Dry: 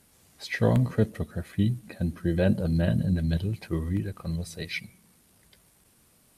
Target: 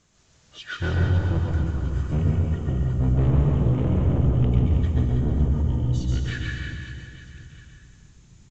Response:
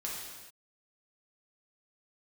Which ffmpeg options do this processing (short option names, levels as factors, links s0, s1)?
-filter_complex "[0:a]bandreject=f=52.5:t=h:w=4,bandreject=f=105:t=h:w=4,asetrate=33075,aresample=44100,asubboost=boost=6:cutoff=220,aresample=16000,asoftclip=type=tanh:threshold=0.1,aresample=44100,aecho=1:1:140|322|558.6|866.2|1266:0.631|0.398|0.251|0.158|0.1,asplit=2[s0][s1];[1:a]atrim=start_sample=2205,adelay=126[s2];[s1][s2]afir=irnorm=-1:irlink=0,volume=0.708[s3];[s0][s3]amix=inputs=2:normalize=0,volume=0.794"